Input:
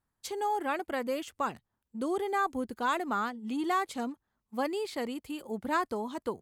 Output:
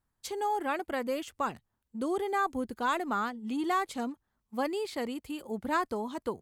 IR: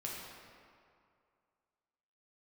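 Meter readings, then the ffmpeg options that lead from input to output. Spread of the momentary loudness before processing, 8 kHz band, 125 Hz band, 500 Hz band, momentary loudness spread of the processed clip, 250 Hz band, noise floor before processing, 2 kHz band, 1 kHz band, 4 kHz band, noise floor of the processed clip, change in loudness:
9 LU, 0.0 dB, can't be measured, 0.0 dB, 9 LU, +0.5 dB, −84 dBFS, 0.0 dB, 0.0 dB, 0.0 dB, −82 dBFS, 0.0 dB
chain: -af "lowshelf=frequency=69:gain=6.5"

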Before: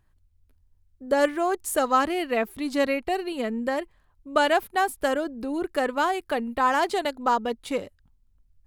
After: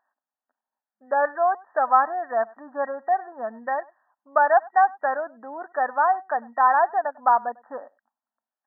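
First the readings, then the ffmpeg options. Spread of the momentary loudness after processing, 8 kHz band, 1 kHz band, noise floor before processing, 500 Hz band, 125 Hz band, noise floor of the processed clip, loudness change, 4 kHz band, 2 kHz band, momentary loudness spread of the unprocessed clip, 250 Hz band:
14 LU, below −40 dB, +5.5 dB, −64 dBFS, −0.5 dB, can't be measured, below −85 dBFS, +2.5 dB, below −40 dB, +0.5 dB, 7 LU, −15.5 dB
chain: -filter_complex "[0:a]lowshelf=frequency=530:width_type=q:width=3:gain=-11,asplit=2[link_01][link_02];[link_02]adelay=99.13,volume=-24dB,highshelf=frequency=4000:gain=-2.23[link_03];[link_01][link_03]amix=inputs=2:normalize=0,afftfilt=real='re*between(b*sr/4096,210,1900)':imag='im*between(b*sr/4096,210,1900)':win_size=4096:overlap=0.75"

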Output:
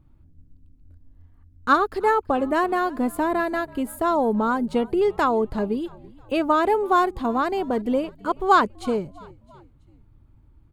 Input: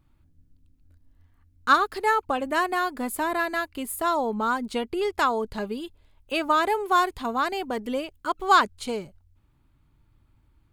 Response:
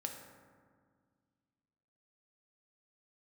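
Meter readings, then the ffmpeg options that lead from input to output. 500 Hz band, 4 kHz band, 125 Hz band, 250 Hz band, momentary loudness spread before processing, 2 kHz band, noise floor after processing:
+5.5 dB, −4.5 dB, can't be measured, +7.0 dB, 11 LU, −1.5 dB, −55 dBFS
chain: -filter_complex "[0:a]tiltshelf=frequency=1100:gain=7,asplit=4[link_01][link_02][link_03][link_04];[link_02]adelay=331,afreqshift=-50,volume=-23dB[link_05];[link_03]adelay=662,afreqshift=-100,volume=-29dB[link_06];[link_04]adelay=993,afreqshift=-150,volume=-35dB[link_07];[link_01][link_05][link_06][link_07]amix=inputs=4:normalize=0,volume=1dB"

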